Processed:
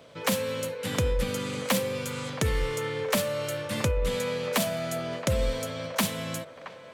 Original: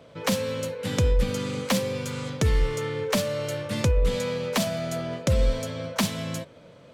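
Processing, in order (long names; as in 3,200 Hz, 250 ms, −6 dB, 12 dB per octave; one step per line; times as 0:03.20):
spectral tilt +1.5 dB per octave
delay with a band-pass on its return 672 ms, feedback 52%, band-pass 990 Hz, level −12.5 dB
dynamic equaliser 5,300 Hz, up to −7 dB, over −42 dBFS, Q 0.99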